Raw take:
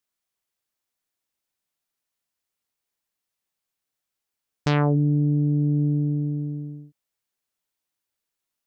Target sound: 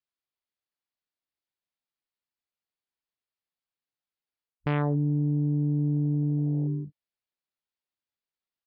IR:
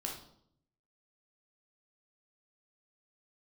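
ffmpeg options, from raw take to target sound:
-af "afwtdn=0.0224,areverse,acompressor=threshold=-32dB:ratio=6,areverse,aresample=11025,aresample=44100,volume=8dB"

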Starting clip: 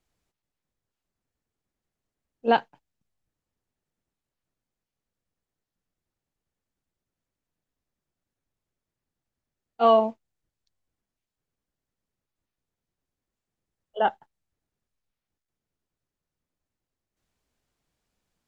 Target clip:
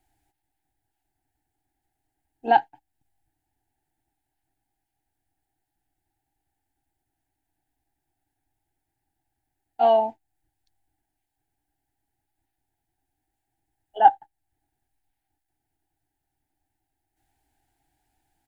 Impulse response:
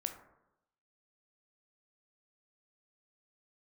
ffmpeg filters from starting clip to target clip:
-filter_complex "[0:a]firequalizer=gain_entry='entry(120,0);entry(200,-13);entry(300,5);entry(520,-16);entry(800,13);entry(1100,-18);entry(1600,1);entry(2400,-4);entry(5900,-7);entry(9400,2)':delay=0.05:min_phase=1,asplit=2[link_01][link_02];[link_02]acompressor=threshold=-41dB:ratio=6,volume=1dB[link_03];[link_01][link_03]amix=inputs=2:normalize=0"

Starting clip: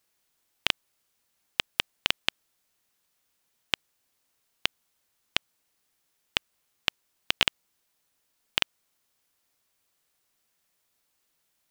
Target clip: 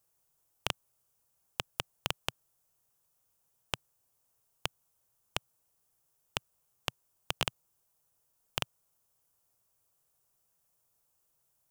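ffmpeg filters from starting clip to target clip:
ffmpeg -i in.wav -af "equalizer=frequency=125:width_type=o:width=1:gain=6,equalizer=frequency=250:width_type=o:width=1:gain=-9,equalizer=frequency=2000:width_type=o:width=1:gain=-11,equalizer=frequency=4000:width_type=o:width=1:gain=-10,volume=1dB" out.wav

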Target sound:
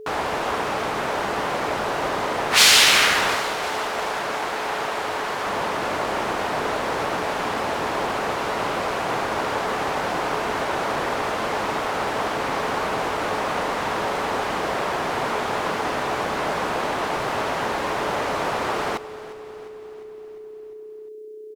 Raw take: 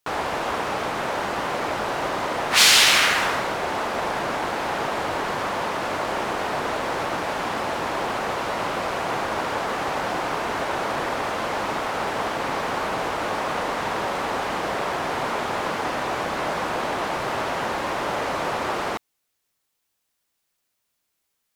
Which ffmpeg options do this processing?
ffmpeg -i in.wav -filter_complex "[0:a]asettb=1/sr,asplit=3[link_01][link_02][link_03];[link_01]atrim=end=3.354[link_04];[link_02]atrim=start=3.35:end=5.47,asetpts=PTS-STARTPTS,afade=type=in:duration=0.004:curve=qsin,afade=type=out:start_time=2.116:duration=0.004:curve=qsin,lowshelf=frequency=410:gain=-8.5[link_05];[link_03]atrim=start=5.466[link_06];[link_04][link_05]acrossfade=duration=0.004:curve1=hsin:curve2=qsin[link_07];[link_07][link_06]acrossfade=duration=0.004:curve1=qsin:curve2=hsin,aeval=exprs='val(0)+0.0141*sin(2*PI*430*n/s)':channel_layout=same,asplit=7[link_08][link_09][link_10][link_11][link_12][link_13][link_14];[link_09]adelay=352,afreqshift=-31,volume=-16.5dB[link_15];[link_10]adelay=704,afreqshift=-62,volume=-21.1dB[link_16];[link_11]adelay=1056,afreqshift=-93,volume=-25.7dB[link_17];[link_12]adelay=1408,afreqshift=-124,volume=-30.2dB[link_18];[link_13]adelay=1760,afreqshift=-155,volume=-34.8dB[link_19];[link_14]adelay=2112,afreqshift=-186,volume=-39.4dB[link_20];[link_08][link_15][link_16][link_17][link_18][link_19][link_20]amix=inputs=7:normalize=0,volume=1dB" out.wav

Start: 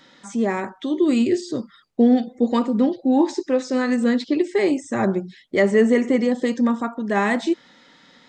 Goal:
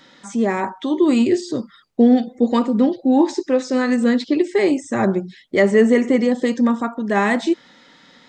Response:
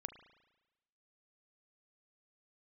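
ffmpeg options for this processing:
-filter_complex "[0:a]asettb=1/sr,asplit=3[link_01][link_02][link_03];[link_01]atrim=end=0.604[link_04];[link_02]atrim=start=0.6:end=1.53,asetpts=PTS-STARTPTS,afade=type=in:duration=0.004:curve=qsin,afade=type=out:start_time=0.926:duration=0.004:curve=qsin,equalizer=frequency=920:width=2.7:gain=9.5[link_05];[link_03]atrim=start=1.526[link_06];[link_04][link_05]acrossfade=duration=0.004:curve1=hsin:curve2=qsin[link_07];[link_07][link_06]acrossfade=duration=0.004:curve1=qsin:curve2=hsin,volume=2.5dB"

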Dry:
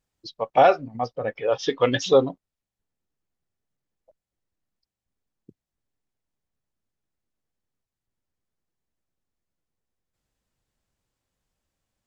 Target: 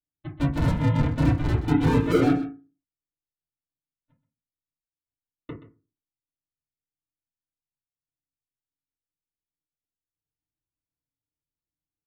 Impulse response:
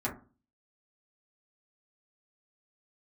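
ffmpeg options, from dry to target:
-filter_complex "[0:a]lowpass=1700,agate=range=-33dB:threshold=-44dB:ratio=3:detection=peak,lowshelf=frequency=280:gain=5,asplit=2[link_01][link_02];[link_02]alimiter=limit=-13.5dB:level=0:latency=1,volume=0.5dB[link_03];[link_01][link_03]amix=inputs=2:normalize=0,acompressor=threshold=-16dB:ratio=6,aresample=8000,acrusher=samples=14:mix=1:aa=0.000001:lfo=1:lforange=14:lforate=0.29,aresample=44100,volume=27dB,asoftclip=hard,volume=-27dB,aecho=1:1:127:0.2[link_04];[1:a]atrim=start_sample=2205,asetrate=52920,aresample=44100[link_05];[link_04][link_05]afir=irnorm=-1:irlink=0,volume=1.5dB"

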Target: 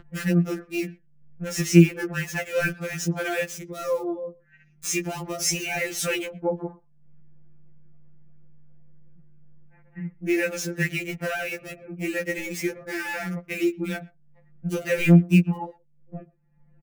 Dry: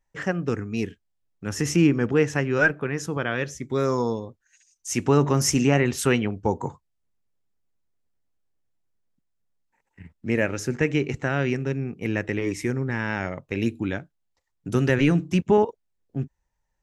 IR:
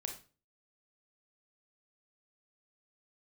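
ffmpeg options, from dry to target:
-filter_complex "[0:a]aeval=exprs='val(0)+0.00178*(sin(2*PI*50*n/s)+sin(2*PI*2*50*n/s)/2+sin(2*PI*3*50*n/s)/3+sin(2*PI*4*50*n/s)/4+sin(2*PI*5*50*n/s)/5)':channel_layout=same,acrossover=split=720|1800[link_01][link_02][link_03];[link_03]acrusher=bits=5:mix=0:aa=0.000001[link_04];[link_01][link_02][link_04]amix=inputs=3:normalize=0,acompressor=mode=upward:threshold=-30dB:ratio=2.5,equalizer=frequency=2400:width_type=o:width=0.23:gain=4,asplit=2[link_05][link_06];[link_06]acompressor=threshold=-31dB:ratio=6,volume=2dB[link_07];[link_05][link_07]amix=inputs=2:normalize=0,equalizer=frequency=1000:width_type=o:width=0.67:gain=-10,asplit=2[link_08][link_09];[link_09]adelay=120,highpass=300,lowpass=3400,asoftclip=type=hard:threshold=-15.5dB,volume=-25dB[link_10];[link_08][link_10]amix=inputs=2:normalize=0,afftfilt=real='re*2.83*eq(mod(b,8),0)':imag='im*2.83*eq(mod(b,8),0)':win_size=2048:overlap=0.75"

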